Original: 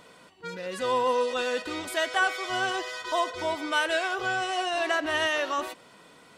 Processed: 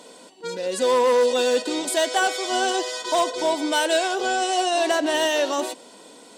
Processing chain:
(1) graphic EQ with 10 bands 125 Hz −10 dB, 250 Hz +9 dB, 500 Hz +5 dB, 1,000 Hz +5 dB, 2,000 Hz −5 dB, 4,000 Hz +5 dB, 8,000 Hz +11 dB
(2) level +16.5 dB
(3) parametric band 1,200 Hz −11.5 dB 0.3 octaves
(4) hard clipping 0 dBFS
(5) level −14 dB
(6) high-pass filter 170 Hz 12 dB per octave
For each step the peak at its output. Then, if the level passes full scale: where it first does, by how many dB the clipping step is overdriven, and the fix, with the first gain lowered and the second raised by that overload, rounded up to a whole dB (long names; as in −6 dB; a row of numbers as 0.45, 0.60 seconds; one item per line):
−8.0, +8.5, +7.0, 0.0, −14.0, −10.5 dBFS
step 2, 7.0 dB
step 2 +9.5 dB, step 5 −7 dB